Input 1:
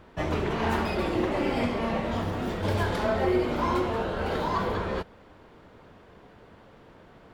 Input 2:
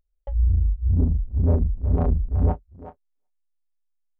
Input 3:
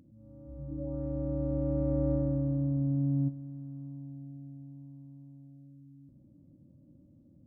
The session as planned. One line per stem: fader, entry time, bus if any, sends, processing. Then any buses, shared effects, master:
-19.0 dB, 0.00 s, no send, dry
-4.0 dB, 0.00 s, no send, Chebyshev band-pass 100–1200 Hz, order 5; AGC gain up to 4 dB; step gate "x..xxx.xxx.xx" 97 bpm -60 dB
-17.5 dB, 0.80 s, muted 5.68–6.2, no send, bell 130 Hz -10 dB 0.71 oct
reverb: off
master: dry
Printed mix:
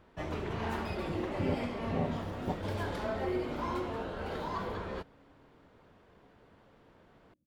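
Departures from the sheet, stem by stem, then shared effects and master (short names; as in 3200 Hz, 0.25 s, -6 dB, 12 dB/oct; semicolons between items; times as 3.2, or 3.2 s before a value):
stem 1 -19.0 dB -> -9.0 dB; stem 2 -4.0 dB -> -11.0 dB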